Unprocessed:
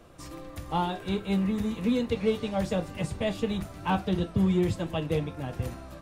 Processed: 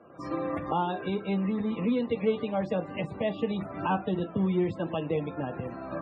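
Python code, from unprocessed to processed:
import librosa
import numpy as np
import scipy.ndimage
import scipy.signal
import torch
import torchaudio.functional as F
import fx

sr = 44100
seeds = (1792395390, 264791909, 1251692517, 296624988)

y = fx.recorder_agc(x, sr, target_db=-20.0, rise_db_per_s=38.0, max_gain_db=30)
y = fx.spec_topn(y, sr, count=64)
y = fx.bandpass_edges(y, sr, low_hz=190.0, high_hz=2800.0)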